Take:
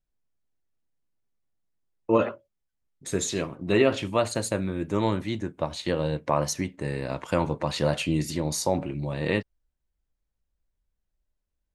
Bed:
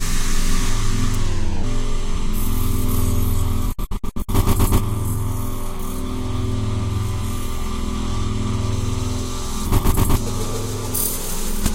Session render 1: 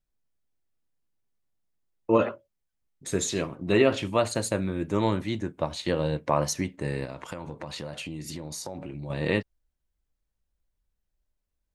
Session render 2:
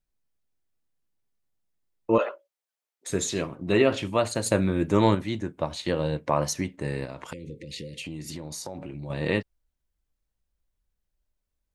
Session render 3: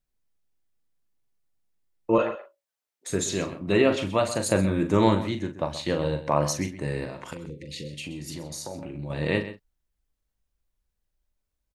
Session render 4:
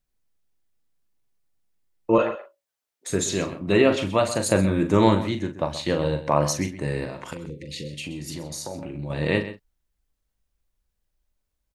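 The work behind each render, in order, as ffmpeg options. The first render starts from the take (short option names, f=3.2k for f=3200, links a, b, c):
-filter_complex "[0:a]asettb=1/sr,asplit=3[a][b][c];[a]atrim=end=7.044[d];[b]atrim=start=7.04:end=9.1,asetpts=PTS-STARTPTS,afade=t=in:d=0.004:c=qsin,afade=t=out:st=2.056:d=0.004:c=qsin,acompressor=threshold=-33dB:ratio=6:attack=3.2:release=140:knee=1:detection=peak[e];[c]atrim=start=9.096[f];[d][e]acrossfade=d=0.004:c1=hsin:c2=qsin[g];[g][f]acrossfade=d=0.004:c1=qsin:c2=hsin"
-filter_complex "[0:a]asettb=1/sr,asplit=3[a][b][c];[a]atrim=end=2.184[d];[b]atrim=start=2.18:end=3.1,asetpts=PTS-STARTPTS,afade=t=in:d=0.004:c=qsin,afade=t=out:st=0.916:d=0.004:c=qsin,highpass=f=450:w=0.5412,highpass=f=450:w=1.3066[e];[c]atrim=start=3.096[f];[d][e]acrossfade=d=0.004:c1=hsin:c2=qsin[g];[g][f]acrossfade=d=0.004:c1=qsin:c2=hsin,asettb=1/sr,asplit=3[h][i][j];[h]atrim=end=4.464[k];[i]atrim=start=4.46:end=5.15,asetpts=PTS-STARTPTS,afade=t=in:d=0.004:c=qsin,afade=t=out:st=0.686:d=0.004:c=qsin,acontrast=24[l];[j]atrim=start=5.146[m];[k][l]acrossfade=d=0.004:c1=hsin:c2=qsin[n];[n][m]acrossfade=d=0.004:c1=qsin:c2=hsin,asettb=1/sr,asplit=3[o][p][q];[o]atrim=end=7.334[r];[p]atrim=start=7.33:end=8.04,asetpts=PTS-STARTPTS,afade=t=in:d=0.004:c=qsin,afade=t=out:st=0.706:d=0.004:c=qsin,asuperstop=centerf=1000:order=20:qfactor=0.73[s];[q]atrim=start=8.036[t];[r][s]acrossfade=d=0.004:c1=hsin:c2=qsin[u];[u][t]acrossfade=d=0.004:c1=qsin:c2=hsin"
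-filter_complex "[0:a]asplit=2[a][b];[b]adelay=41,volume=-9dB[c];[a][c]amix=inputs=2:normalize=0,asplit=2[d][e];[e]adelay=128.3,volume=-13dB,highshelf=f=4k:g=-2.89[f];[d][f]amix=inputs=2:normalize=0"
-af "volume=2.5dB"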